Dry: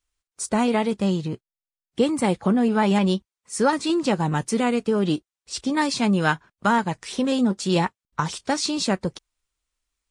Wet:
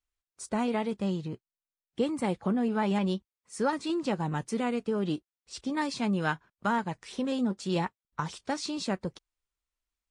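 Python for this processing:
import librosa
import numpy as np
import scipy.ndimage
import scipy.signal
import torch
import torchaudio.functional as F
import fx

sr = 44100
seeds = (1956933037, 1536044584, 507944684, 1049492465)

y = fx.high_shelf(x, sr, hz=5000.0, db=-6.0)
y = F.gain(torch.from_numpy(y), -8.0).numpy()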